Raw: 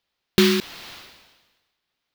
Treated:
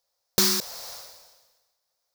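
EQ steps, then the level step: EQ curve 100 Hz 0 dB, 350 Hz -9 dB, 520 Hz +13 dB, 3000 Hz -6 dB, 5300 Hz +15 dB; -7.0 dB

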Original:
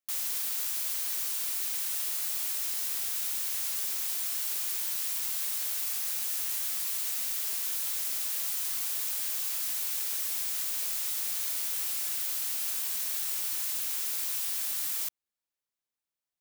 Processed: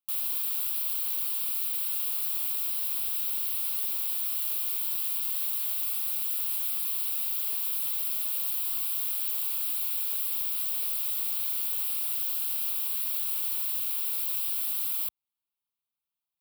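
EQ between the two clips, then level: HPF 46 Hz; high shelf 8500 Hz +4 dB; fixed phaser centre 1800 Hz, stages 6; 0.0 dB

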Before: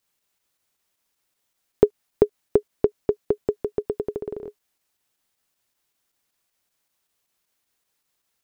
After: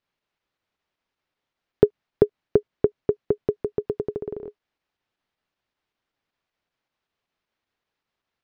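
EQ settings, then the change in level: dynamic EQ 130 Hz, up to +6 dB, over -40 dBFS, Q 1.1; air absorption 230 m; 0.0 dB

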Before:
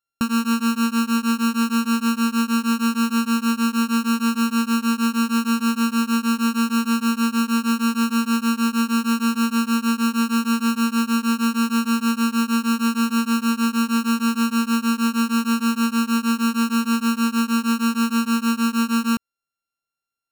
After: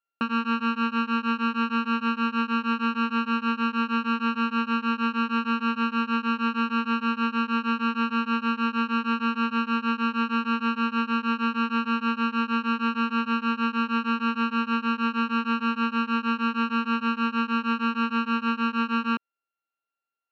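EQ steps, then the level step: HPF 330 Hz 12 dB/oct; LPF 3100 Hz 24 dB/oct; 0.0 dB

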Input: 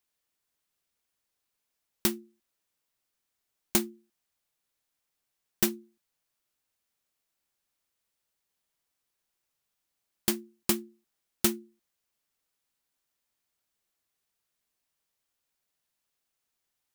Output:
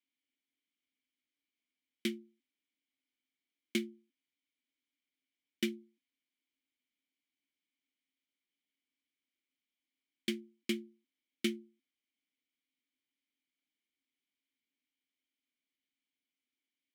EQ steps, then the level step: vowel filter i; HPF 170 Hz; high shelf 8200 Hz +5.5 dB; +7.5 dB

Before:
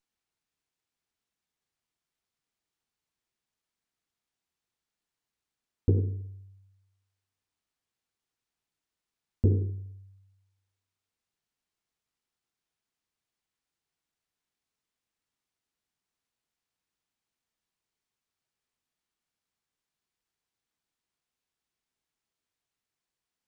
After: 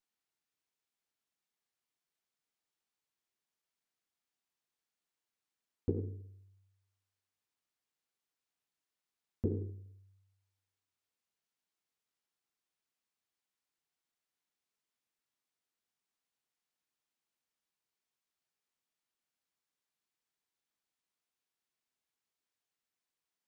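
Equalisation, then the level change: low shelf 140 Hz -10 dB; notches 50/100 Hz; -3.5 dB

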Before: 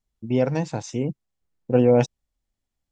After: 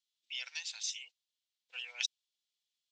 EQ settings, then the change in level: ladder high-pass 2900 Hz, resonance 45%; air absorption 65 m; +12.0 dB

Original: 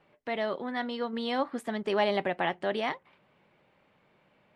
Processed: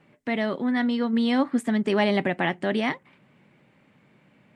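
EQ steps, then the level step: graphic EQ 125/250/2000/8000 Hz +10/+11/+6/+10 dB; 0.0 dB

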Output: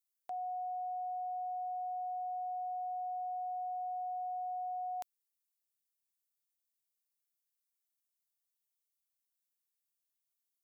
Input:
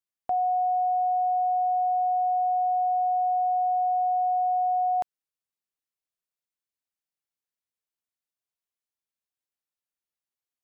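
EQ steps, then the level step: differentiator; low shelf 490 Hz +8 dB; +2.5 dB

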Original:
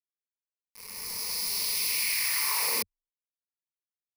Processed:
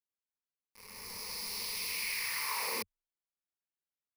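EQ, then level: high shelf 4000 Hz -9 dB; -2.5 dB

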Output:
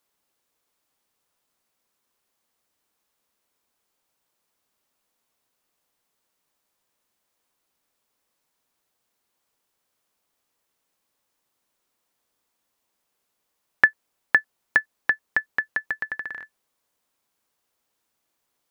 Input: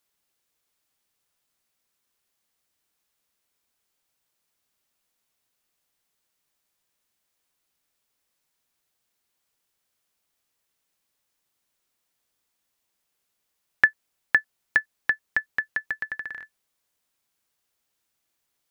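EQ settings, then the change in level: graphic EQ 250/500/1000 Hz +4/+4/+5 dB; 0.0 dB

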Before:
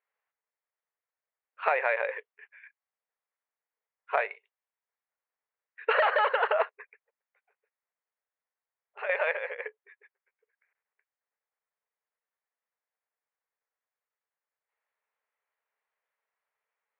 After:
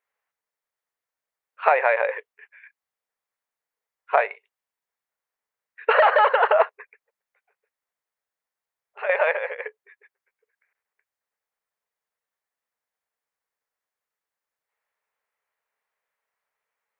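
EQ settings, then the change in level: dynamic EQ 780 Hz, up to +6 dB, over -39 dBFS, Q 0.83; +3.5 dB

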